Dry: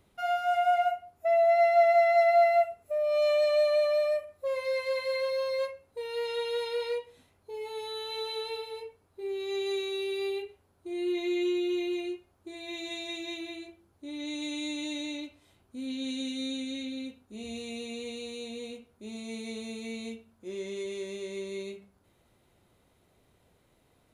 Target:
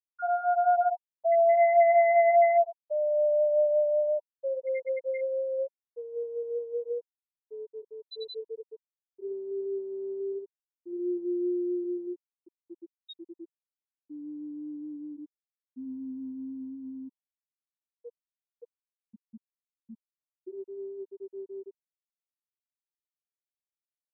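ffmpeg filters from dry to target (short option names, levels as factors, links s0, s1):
-af "highpass=f=91:p=1,afftfilt=real='re*gte(hypot(re,im),0.141)':imag='im*gte(hypot(re,im),0.141)':win_size=1024:overlap=0.75,equalizer=f=950:w=5.4:g=14.5"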